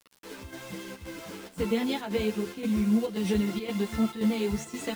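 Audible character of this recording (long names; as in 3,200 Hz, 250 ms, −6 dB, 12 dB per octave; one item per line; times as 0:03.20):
a quantiser's noise floor 8 bits, dither none
chopped level 1.9 Hz, depth 60%, duty 80%
a shimmering, thickened sound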